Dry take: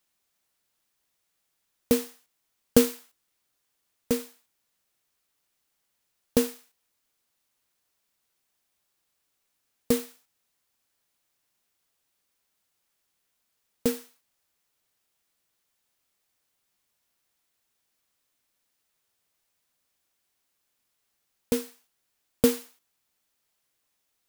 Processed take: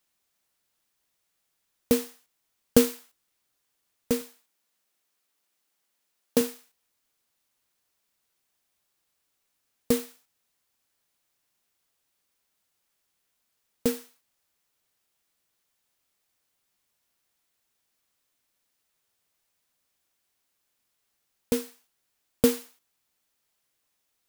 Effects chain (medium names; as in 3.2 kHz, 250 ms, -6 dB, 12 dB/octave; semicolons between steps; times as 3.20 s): 4.21–6.41 s: high-pass 180 Hz 12 dB/octave